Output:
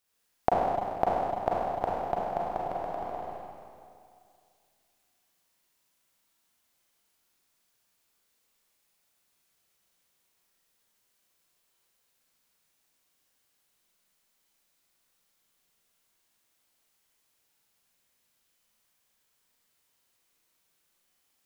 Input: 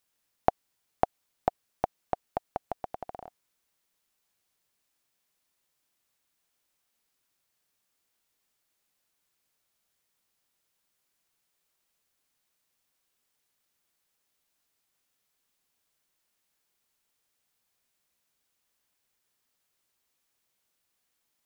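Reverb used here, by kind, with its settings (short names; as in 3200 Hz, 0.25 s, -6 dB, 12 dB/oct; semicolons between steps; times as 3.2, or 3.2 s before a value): Schroeder reverb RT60 2.3 s, combs from 33 ms, DRR -5.5 dB; gain -2 dB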